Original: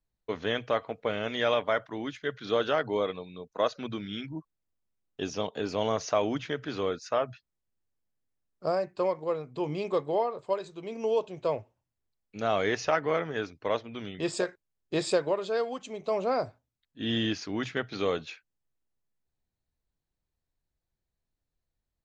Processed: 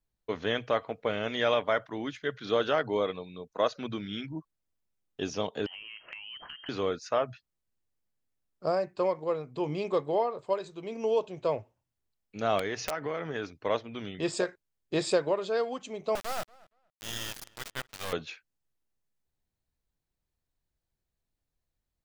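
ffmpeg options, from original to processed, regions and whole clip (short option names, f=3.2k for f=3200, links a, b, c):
-filter_complex "[0:a]asettb=1/sr,asplit=3[a][b][c];[a]atrim=end=5.664[d];[b]atrim=start=5.66:end=6.69,asetpts=PTS-STARTPTS,afade=t=in:d=0.004:c=qsin,afade=t=out:st=1.026:d=0.004:c=qsin,lowpass=f=2.8k:t=q:w=0.5098,lowpass=f=2.8k:t=q:w=0.6013,lowpass=f=2.8k:t=q:w=0.9,lowpass=f=2.8k:t=q:w=2.563,afreqshift=-3300,acompressor=threshold=-40dB:ratio=16:attack=3.2:release=140:knee=1:detection=peak[e];[c]atrim=start=6.686[f];[d][e]acrossfade=d=0.004:c1=hsin:c2=qsin[g];[g][f]acrossfade=d=0.004:c1=qsin:c2=hsin,asettb=1/sr,asplit=3[h][i][j];[h]atrim=end=12.594[k];[i]atrim=start=12.59:end=13.56,asetpts=PTS-STARTPTS,afade=t=in:d=0.004:c=qsin,afade=t=out:st=0.966:d=0.004:c=qsin,acompressor=threshold=-28dB:ratio=6:attack=3.2:release=140:knee=1:detection=peak,aeval=exprs='(mod(11.2*val(0)+1,2)-1)/11.2':c=same[l];[j]atrim=start=13.556[m];[k][l]acrossfade=d=0.004:c1=hsin:c2=qsin[n];[n][m]acrossfade=d=0.004:c1=qsin:c2=hsin,asettb=1/sr,asplit=3[o][p][q];[o]atrim=end=16.154[r];[p]atrim=start=16.15:end=18.13,asetpts=PTS-STARTPTS,afade=t=in:d=0.004:c=qsin,afade=t=out:st=1.976:d=0.004:c=qsin,highpass=f=610:w=0.5412,highpass=f=610:w=1.3066,acrusher=bits=3:dc=4:mix=0:aa=0.000001,asplit=2[s][t];[t]adelay=234,lowpass=f=3.2k:p=1,volume=-23dB,asplit=2[u][v];[v]adelay=234,lowpass=f=3.2k:p=1,volume=0.18[w];[s][u][w]amix=inputs=3:normalize=0,atrim=end_sample=87318[x];[q]atrim=start=18.126[y];[r][x]acrossfade=d=0.004:c1=hsin:c2=qsin[z];[z][y]acrossfade=d=0.004:c1=qsin:c2=hsin"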